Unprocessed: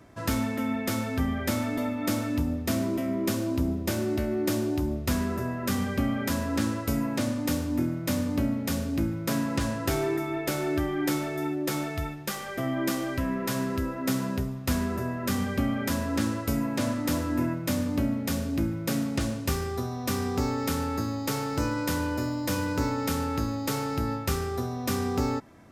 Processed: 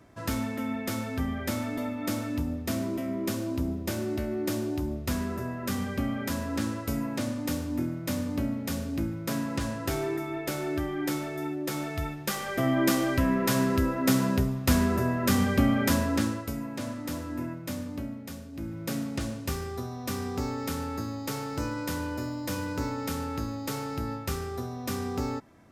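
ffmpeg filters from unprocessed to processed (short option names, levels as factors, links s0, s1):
-af "volume=5.01,afade=t=in:st=11.74:d=0.96:silence=0.446684,afade=t=out:st=15.91:d=0.61:silence=0.281838,afade=t=out:st=17.72:d=0.8:silence=0.446684,afade=t=in:st=18.52:d=0.31:silence=0.316228"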